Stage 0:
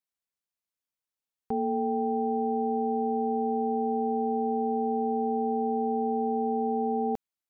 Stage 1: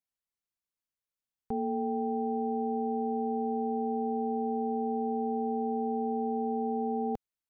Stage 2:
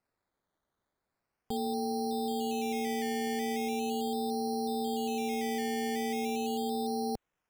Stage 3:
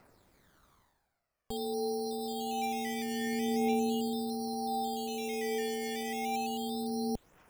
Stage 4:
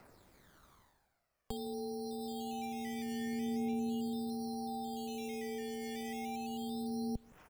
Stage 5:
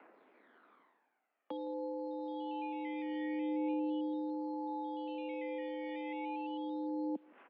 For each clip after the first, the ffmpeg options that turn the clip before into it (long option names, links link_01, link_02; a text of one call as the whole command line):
ffmpeg -i in.wav -af "lowshelf=frequency=130:gain=9,volume=-4.5dB" out.wav
ffmpeg -i in.wav -af "alimiter=level_in=9.5dB:limit=-24dB:level=0:latency=1:release=11,volume=-9.5dB,acrusher=samples=13:mix=1:aa=0.000001:lfo=1:lforange=7.8:lforate=0.39,volume=7.5dB" out.wav
ffmpeg -i in.wav -af "areverse,acompressor=mode=upward:threshold=-48dB:ratio=2.5,areverse,aphaser=in_gain=1:out_gain=1:delay=2.2:decay=0.55:speed=0.27:type=triangular,volume=-2dB" out.wav
ffmpeg -i in.wav -filter_complex "[0:a]acrossover=split=200[link_01][link_02];[link_02]acompressor=threshold=-45dB:ratio=4[link_03];[link_01][link_03]amix=inputs=2:normalize=0,asplit=2[link_04][link_05];[link_05]adelay=163.3,volume=-25dB,highshelf=frequency=4000:gain=-3.67[link_06];[link_04][link_06]amix=inputs=2:normalize=0,volume=2dB" out.wav
ffmpeg -i in.wav -af "highpass=frequency=180:width_type=q:width=0.5412,highpass=frequency=180:width_type=q:width=1.307,lowpass=frequency=2900:width_type=q:width=0.5176,lowpass=frequency=2900:width_type=q:width=0.7071,lowpass=frequency=2900:width_type=q:width=1.932,afreqshift=72,volume=1dB" out.wav